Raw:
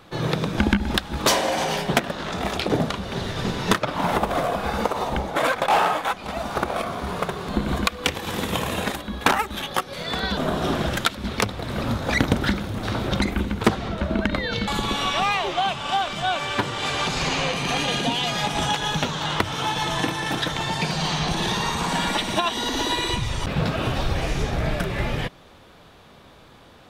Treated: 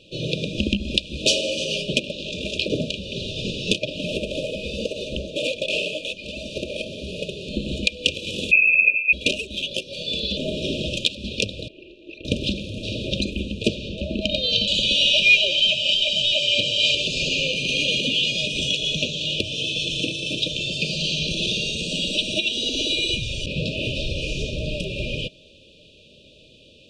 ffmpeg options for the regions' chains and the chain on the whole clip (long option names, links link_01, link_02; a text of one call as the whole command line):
ffmpeg -i in.wav -filter_complex "[0:a]asettb=1/sr,asplit=3[link_01][link_02][link_03];[link_01]atrim=end=8.514[link_04];[link_02]atrim=start=8.51:end=9.13,asetpts=PTS-STARTPTS,afade=type=in:duration=0.004:curve=qsin,afade=type=out:start_time=0.616:duration=0.004:curve=qsin,lowshelf=frequency=320:gain=9,lowpass=frequency=2300:width_type=q:width=0.5098,lowpass=frequency=2300:width_type=q:width=0.6013,lowpass=frequency=2300:width_type=q:width=0.9,lowpass=frequency=2300:width_type=q:width=2.563,afreqshift=-2700[link_05];[link_03]atrim=start=9.126[link_06];[link_04][link_05]acrossfade=duration=0.004:curve1=hsin:curve2=qsin[link_07];[link_07][link_06]acrossfade=duration=0.004:curve1=qsin:curve2=hsin,asettb=1/sr,asplit=3[link_08][link_09][link_10];[link_08]atrim=end=11.684[link_11];[link_09]atrim=start=11.68:end=12.25,asetpts=PTS-STARTPTS,afade=type=in:duration=0.004:curve=qsin,afade=type=out:start_time=0.566:duration=0.004:curve=qsin,acrossover=split=5000[link_12][link_13];[link_13]acompressor=threshold=-42dB:ratio=4:attack=1:release=60[link_14];[link_12][link_14]amix=inputs=2:normalize=0,asplit=3[link_15][link_16][link_17];[link_15]bandpass=frequency=530:width_type=q:width=8,volume=0dB[link_18];[link_16]bandpass=frequency=1840:width_type=q:width=8,volume=-6dB[link_19];[link_17]bandpass=frequency=2480:width_type=q:width=8,volume=-9dB[link_20];[link_18][link_19][link_20]amix=inputs=3:normalize=0,aeval=exprs='val(0)*sin(2*PI*190*n/s)':channel_layout=same[link_21];[link_10]atrim=start=12.246[link_22];[link_11][link_21]acrossfade=duration=0.004:curve1=hsin:curve2=qsin[link_23];[link_23][link_22]acrossfade=duration=0.004:curve1=qsin:curve2=hsin,asettb=1/sr,asplit=3[link_24][link_25][link_26];[link_24]atrim=end=14.214[link_27];[link_25]atrim=start=14.21:end=16.95,asetpts=PTS-STARTPTS,afade=type=in:duration=0.004:curve=qsin,afade=type=out:start_time=2.736:duration=0.004:curve=qsin,acrossover=split=7500[link_28][link_29];[link_29]acompressor=threshold=-51dB:ratio=4:attack=1:release=60[link_30];[link_28][link_30]amix=inputs=2:normalize=0,aecho=1:1:1.3:0.6,atrim=end_sample=120834,asplit=2[link_31][link_32];[link_32]highpass=frequency=720:poles=1,volume=12dB,asoftclip=type=tanh:threshold=-5.5dB[link_33];[link_31][link_33]amix=inputs=2:normalize=0,lowpass=frequency=6400:poles=1,volume=-6dB[link_34];[link_26]atrim=start=16.946[link_35];[link_27][link_34]acrossfade=duration=0.004:curve1=hsin:curve2=qsin[link_36];[link_36][link_35]acrossfade=duration=0.004:curve1=qsin:curve2=hsin,lowpass=frequency=9100:width=0.5412,lowpass=frequency=9100:width=1.3066,equalizer=frequency=2000:width=0.49:gain=12,afftfilt=real='re*(1-between(b*sr/4096,640,2400))':imag='im*(1-between(b*sr/4096,640,2400))':win_size=4096:overlap=0.75,volume=-4dB" out.wav